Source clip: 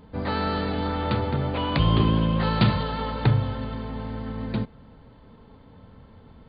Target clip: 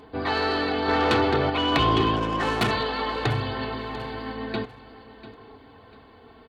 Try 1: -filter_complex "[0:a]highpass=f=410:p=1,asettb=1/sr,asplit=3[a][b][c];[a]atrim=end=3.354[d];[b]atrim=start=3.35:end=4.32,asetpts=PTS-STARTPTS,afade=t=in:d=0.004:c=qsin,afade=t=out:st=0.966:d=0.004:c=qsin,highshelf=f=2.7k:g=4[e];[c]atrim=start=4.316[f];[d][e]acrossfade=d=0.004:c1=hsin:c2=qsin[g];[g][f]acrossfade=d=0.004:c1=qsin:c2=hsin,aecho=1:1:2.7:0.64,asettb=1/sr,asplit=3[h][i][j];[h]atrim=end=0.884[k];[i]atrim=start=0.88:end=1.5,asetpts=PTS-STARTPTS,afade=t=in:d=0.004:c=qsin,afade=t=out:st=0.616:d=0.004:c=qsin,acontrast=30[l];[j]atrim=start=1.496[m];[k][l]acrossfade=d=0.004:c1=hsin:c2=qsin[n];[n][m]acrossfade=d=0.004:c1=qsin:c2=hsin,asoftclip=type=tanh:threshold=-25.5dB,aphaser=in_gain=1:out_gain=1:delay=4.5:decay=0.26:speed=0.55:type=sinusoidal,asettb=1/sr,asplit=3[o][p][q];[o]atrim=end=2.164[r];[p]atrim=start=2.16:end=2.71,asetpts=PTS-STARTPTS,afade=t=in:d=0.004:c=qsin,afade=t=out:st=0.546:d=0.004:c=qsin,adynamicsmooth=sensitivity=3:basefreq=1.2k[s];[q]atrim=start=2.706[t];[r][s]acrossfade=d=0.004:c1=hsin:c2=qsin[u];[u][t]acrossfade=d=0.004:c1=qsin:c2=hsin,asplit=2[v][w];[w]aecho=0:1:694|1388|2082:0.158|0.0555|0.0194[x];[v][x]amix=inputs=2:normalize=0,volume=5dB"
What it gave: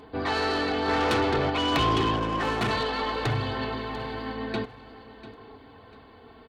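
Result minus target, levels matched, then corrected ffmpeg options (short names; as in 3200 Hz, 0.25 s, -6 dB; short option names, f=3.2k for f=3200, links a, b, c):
soft clip: distortion +7 dB
-filter_complex "[0:a]highpass=f=410:p=1,asettb=1/sr,asplit=3[a][b][c];[a]atrim=end=3.354[d];[b]atrim=start=3.35:end=4.32,asetpts=PTS-STARTPTS,afade=t=in:d=0.004:c=qsin,afade=t=out:st=0.966:d=0.004:c=qsin,highshelf=f=2.7k:g=4[e];[c]atrim=start=4.316[f];[d][e]acrossfade=d=0.004:c1=hsin:c2=qsin[g];[g][f]acrossfade=d=0.004:c1=qsin:c2=hsin,aecho=1:1:2.7:0.64,asettb=1/sr,asplit=3[h][i][j];[h]atrim=end=0.884[k];[i]atrim=start=0.88:end=1.5,asetpts=PTS-STARTPTS,afade=t=in:d=0.004:c=qsin,afade=t=out:st=0.616:d=0.004:c=qsin,acontrast=30[l];[j]atrim=start=1.496[m];[k][l]acrossfade=d=0.004:c1=hsin:c2=qsin[n];[n][m]acrossfade=d=0.004:c1=qsin:c2=hsin,asoftclip=type=tanh:threshold=-19dB,aphaser=in_gain=1:out_gain=1:delay=4.5:decay=0.26:speed=0.55:type=sinusoidal,asettb=1/sr,asplit=3[o][p][q];[o]atrim=end=2.164[r];[p]atrim=start=2.16:end=2.71,asetpts=PTS-STARTPTS,afade=t=in:d=0.004:c=qsin,afade=t=out:st=0.546:d=0.004:c=qsin,adynamicsmooth=sensitivity=3:basefreq=1.2k[s];[q]atrim=start=2.706[t];[r][s]acrossfade=d=0.004:c1=hsin:c2=qsin[u];[u][t]acrossfade=d=0.004:c1=qsin:c2=hsin,asplit=2[v][w];[w]aecho=0:1:694|1388|2082:0.158|0.0555|0.0194[x];[v][x]amix=inputs=2:normalize=0,volume=5dB"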